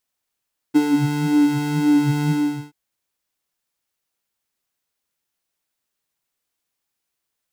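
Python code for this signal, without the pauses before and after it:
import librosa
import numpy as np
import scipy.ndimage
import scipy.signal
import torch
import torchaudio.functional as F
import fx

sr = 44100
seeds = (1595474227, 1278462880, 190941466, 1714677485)

y = fx.sub_patch_wobble(sr, seeds[0], note=62, wave='square', wave2='square', interval_st=-12, level2_db=-5.5, sub_db=-15.0, noise_db=-23, kind='highpass', cutoff_hz=130.0, q=4.4, env_oct=1.0, env_decay_s=0.27, env_sustain_pct=40, attack_ms=21.0, decay_s=0.13, sustain_db=-2.5, release_s=0.42, note_s=1.56, lfo_hz=1.9, wobble_oct=0.8)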